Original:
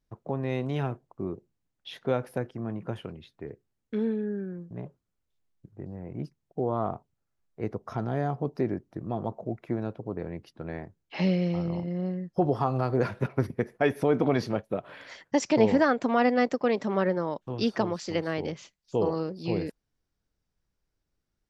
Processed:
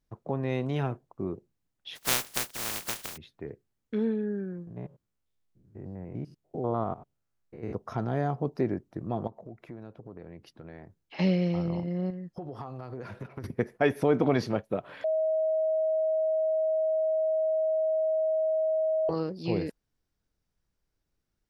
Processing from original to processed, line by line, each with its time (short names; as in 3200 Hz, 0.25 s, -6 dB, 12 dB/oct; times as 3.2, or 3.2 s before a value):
1.95–3.16 spectral contrast lowered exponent 0.1
4.67–7.75 stepped spectrum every 0.1 s
9.27–11.19 compressor 2.5:1, threshold -45 dBFS
12.1–13.44 compressor 8:1, threshold -35 dBFS
15.04–19.09 bleep 634 Hz -23.5 dBFS